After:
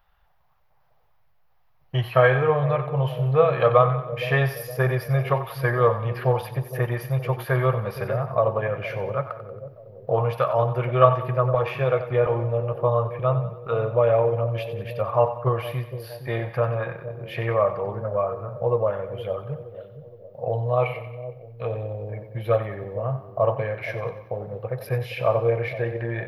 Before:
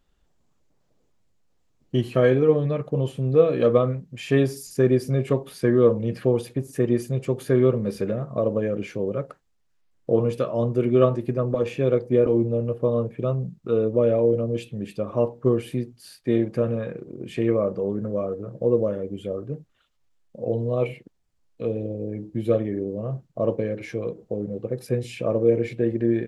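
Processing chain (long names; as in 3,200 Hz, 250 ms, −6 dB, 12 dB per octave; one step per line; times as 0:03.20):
drawn EQ curve 140 Hz 0 dB, 260 Hz −23 dB, 790 Hz +11 dB, 2,000 Hz +6 dB, 5,500 Hz −6 dB, 8,000 Hz −25 dB, 12,000 Hz +7 dB
echo with a time of its own for lows and highs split 610 Hz, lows 466 ms, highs 92 ms, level −11.5 dB
level +2 dB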